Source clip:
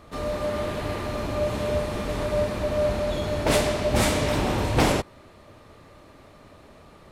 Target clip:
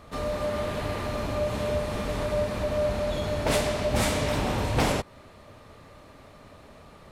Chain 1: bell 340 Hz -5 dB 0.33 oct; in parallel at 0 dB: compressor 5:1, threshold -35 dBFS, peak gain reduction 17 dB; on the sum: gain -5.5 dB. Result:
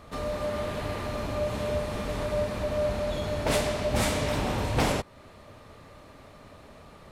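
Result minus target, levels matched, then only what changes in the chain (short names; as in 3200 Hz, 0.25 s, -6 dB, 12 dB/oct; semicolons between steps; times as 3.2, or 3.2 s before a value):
compressor: peak gain reduction +5.5 dB
change: compressor 5:1, threshold -28 dBFS, peak gain reduction 11 dB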